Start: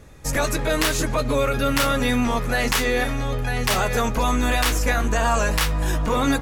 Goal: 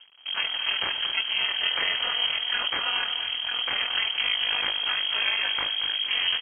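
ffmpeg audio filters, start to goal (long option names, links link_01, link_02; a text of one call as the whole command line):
ffmpeg -i in.wav -af "flanger=delay=3.6:depth=7.3:regen=66:speed=1.2:shape=triangular,aresample=11025,aeval=exprs='max(val(0),0)':channel_layout=same,aresample=44100,aeval=exprs='val(0)*sin(2*PI*95*n/s)':channel_layout=same,aecho=1:1:229|458|687|916:0.335|0.131|0.0509|0.0199,lowpass=frequency=2800:width_type=q:width=0.5098,lowpass=frequency=2800:width_type=q:width=0.6013,lowpass=frequency=2800:width_type=q:width=0.9,lowpass=frequency=2800:width_type=q:width=2.563,afreqshift=-3300,volume=4.5dB" out.wav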